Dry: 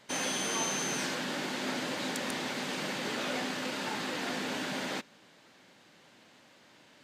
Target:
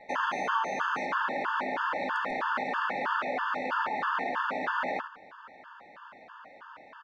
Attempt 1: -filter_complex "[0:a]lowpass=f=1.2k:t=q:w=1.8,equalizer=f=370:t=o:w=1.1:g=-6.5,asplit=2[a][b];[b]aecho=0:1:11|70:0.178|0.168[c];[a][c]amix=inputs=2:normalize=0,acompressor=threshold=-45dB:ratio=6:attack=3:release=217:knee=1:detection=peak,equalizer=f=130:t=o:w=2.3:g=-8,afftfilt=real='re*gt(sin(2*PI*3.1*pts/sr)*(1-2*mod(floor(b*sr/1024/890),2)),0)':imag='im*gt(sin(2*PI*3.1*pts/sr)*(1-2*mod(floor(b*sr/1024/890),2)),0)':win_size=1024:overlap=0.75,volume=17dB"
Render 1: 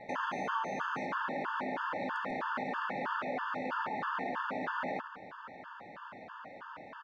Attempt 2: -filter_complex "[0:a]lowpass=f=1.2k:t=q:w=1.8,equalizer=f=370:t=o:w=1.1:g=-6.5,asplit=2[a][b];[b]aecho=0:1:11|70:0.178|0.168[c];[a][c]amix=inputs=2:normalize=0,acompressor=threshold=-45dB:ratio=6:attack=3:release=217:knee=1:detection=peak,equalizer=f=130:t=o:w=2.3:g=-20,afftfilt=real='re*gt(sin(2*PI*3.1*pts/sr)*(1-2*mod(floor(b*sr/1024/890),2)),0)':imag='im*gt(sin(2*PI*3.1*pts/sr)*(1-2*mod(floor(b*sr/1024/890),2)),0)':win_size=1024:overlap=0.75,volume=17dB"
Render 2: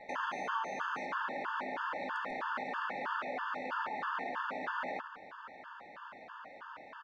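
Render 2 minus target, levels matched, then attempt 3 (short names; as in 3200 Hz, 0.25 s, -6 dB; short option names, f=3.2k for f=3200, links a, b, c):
compressor: peak gain reduction +7 dB
-filter_complex "[0:a]lowpass=f=1.2k:t=q:w=1.8,equalizer=f=370:t=o:w=1.1:g=-6.5,asplit=2[a][b];[b]aecho=0:1:11|70:0.178|0.168[c];[a][c]amix=inputs=2:normalize=0,acompressor=threshold=-36.5dB:ratio=6:attack=3:release=217:knee=1:detection=peak,equalizer=f=130:t=o:w=2.3:g=-20,afftfilt=real='re*gt(sin(2*PI*3.1*pts/sr)*(1-2*mod(floor(b*sr/1024/890),2)),0)':imag='im*gt(sin(2*PI*3.1*pts/sr)*(1-2*mod(floor(b*sr/1024/890),2)),0)':win_size=1024:overlap=0.75,volume=17dB"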